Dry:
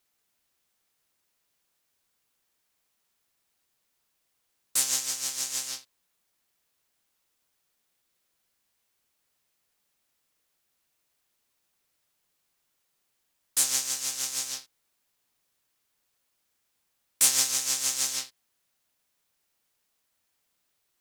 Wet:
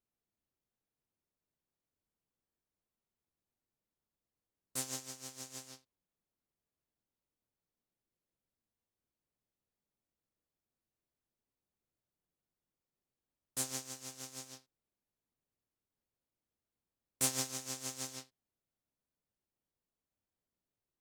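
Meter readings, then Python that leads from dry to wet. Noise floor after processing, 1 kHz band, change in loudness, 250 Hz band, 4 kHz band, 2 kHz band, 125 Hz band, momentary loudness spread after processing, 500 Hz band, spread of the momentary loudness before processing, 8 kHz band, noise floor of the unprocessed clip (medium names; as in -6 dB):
under -85 dBFS, -6.5 dB, -13.5 dB, +3.0 dB, -14.5 dB, -12.0 dB, no reading, 17 LU, -1.0 dB, 13 LU, -14.5 dB, -77 dBFS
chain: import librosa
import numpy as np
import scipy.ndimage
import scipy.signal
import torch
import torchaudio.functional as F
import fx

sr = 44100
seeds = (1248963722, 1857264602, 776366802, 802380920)

y = fx.tilt_shelf(x, sr, db=10.0, hz=800.0)
y = fx.upward_expand(y, sr, threshold_db=-50.0, expansion=1.5)
y = F.gain(torch.from_numpy(y), -1.5).numpy()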